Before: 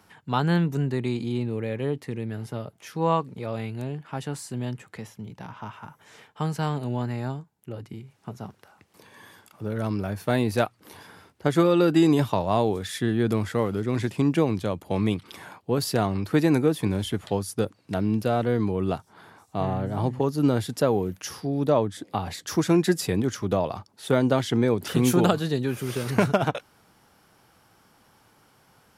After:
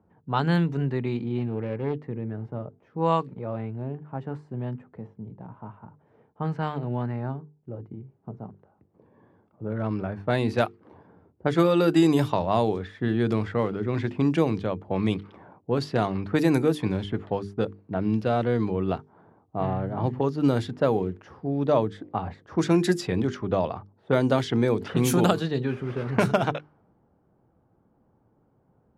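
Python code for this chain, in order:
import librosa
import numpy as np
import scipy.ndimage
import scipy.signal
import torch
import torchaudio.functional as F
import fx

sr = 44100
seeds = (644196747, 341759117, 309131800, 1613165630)

y = fx.self_delay(x, sr, depth_ms=0.18, at=(1.38, 2.09))
y = fx.env_lowpass(y, sr, base_hz=470.0, full_db=-16.0)
y = fx.hum_notches(y, sr, base_hz=50, count=9)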